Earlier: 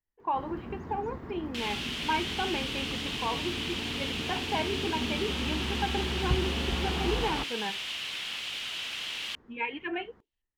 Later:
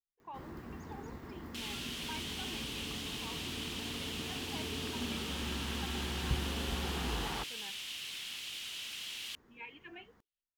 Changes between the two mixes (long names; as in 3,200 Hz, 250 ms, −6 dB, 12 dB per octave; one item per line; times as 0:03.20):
speech −5.0 dB
first sound +8.0 dB
master: add first-order pre-emphasis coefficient 0.8